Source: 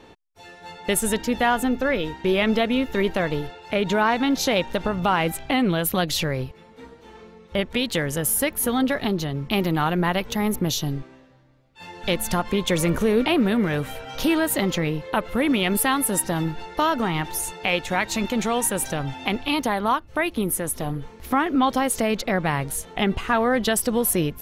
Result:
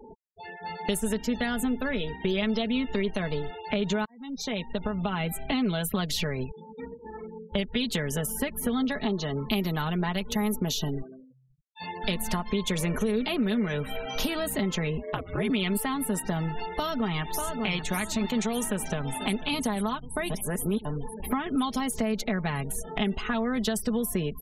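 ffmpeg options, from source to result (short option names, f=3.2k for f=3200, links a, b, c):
-filter_complex "[0:a]asettb=1/sr,asplit=3[a][b][c];[a]atrim=end=9.034[d];[b]atrim=start=9.03:end=9.49,asetpts=PTS-STARTPTS,afade=t=in:d=0.004:c=qsin,afade=t=out:st=0.456:d=0.004:c=qsin,asplit=2[e][f];[f]highpass=f=720:p=1,volume=13dB,asoftclip=type=tanh:threshold=-12.5dB[g];[e][g]amix=inputs=2:normalize=0,lowpass=f=1.4k:p=1,volume=-6dB[h];[c]atrim=start=9.486[i];[d][h]acrossfade=d=0.004:c1=hsin:c2=qsin[j];[j][i]acrossfade=d=0.004:c1=qsin:c2=hsin,asettb=1/sr,asplit=3[k][l][m];[k]atrim=end=14.974[n];[l]atrim=start=14.97:end=15.5,asetpts=PTS-STARTPTS,afade=t=in:d=0.004:c=qsin,afade=t=out:st=0.526:d=0.004:c=qsin,aeval=exprs='val(0)*sin(2*PI*92*n/s)':c=same[o];[m]atrim=start=15.496[p];[n][o]acrossfade=d=0.004:c1=hsin:c2=qsin[q];[q][p]acrossfade=d=0.004:c1=qsin:c2=hsin,asplit=2[r][s];[s]afade=t=in:st=16.71:d=0.01,afade=t=out:st=17.63:d=0.01,aecho=0:1:590|1180|1770|2360|2950:0.316228|0.158114|0.0790569|0.0395285|0.0197642[t];[r][t]amix=inputs=2:normalize=0,asplit=2[u][v];[v]afade=t=in:st=18.55:d=0.01,afade=t=out:st=19.42:d=0.01,aecho=0:1:490|980|1470|1960|2450|2940|3430|3920|4410|4900|5390|5880:0.141254|0.113003|0.0904024|0.0723219|0.0578575|0.046286|0.0370288|0.0296231|0.0236984|0.0189588|0.015167|0.0121336[w];[u][w]amix=inputs=2:normalize=0,asplit=4[x][y][z][aa];[x]atrim=end=4.05,asetpts=PTS-STARTPTS,afade=t=out:st=4.046:d=0.004:c=hsin[ab];[y]atrim=start=4.05:end=20.302,asetpts=PTS-STARTPTS,afade=t=in:d=1.48[ac];[z]atrim=start=20.298:end=20.852,asetpts=PTS-STARTPTS,areverse[ad];[aa]atrim=start=20.848[ae];[ab][ac]concat=n=2:v=0:a=1[af];[af][ad]acrossfade=d=0.004:c1=hsin:c2=hsin[ag];[ag][ae]acrossfade=d=0.004:c1=hsin:c2=hsin,afftfilt=real='re*gte(hypot(re,im),0.0112)':imag='im*gte(hypot(re,im),0.0112)':win_size=1024:overlap=0.75,aecho=1:1:4.7:0.67,acrossover=split=270|4200[ah][ai][aj];[ah]acompressor=threshold=-32dB:ratio=4[ak];[ai]acompressor=threshold=-34dB:ratio=4[al];[aj]acompressor=threshold=-38dB:ratio=4[am];[ak][al][am]amix=inputs=3:normalize=0,volume=2dB"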